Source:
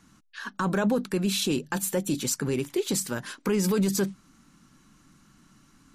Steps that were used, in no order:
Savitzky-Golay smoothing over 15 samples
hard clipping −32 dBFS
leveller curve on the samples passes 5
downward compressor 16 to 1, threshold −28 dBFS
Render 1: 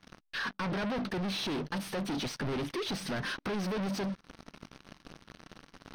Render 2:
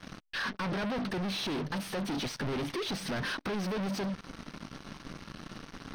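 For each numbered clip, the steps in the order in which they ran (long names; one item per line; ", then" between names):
leveller curve on the samples, then downward compressor, then hard clipping, then Savitzky-Golay smoothing
downward compressor, then leveller curve on the samples, then hard clipping, then Savitzky-Golay smoothing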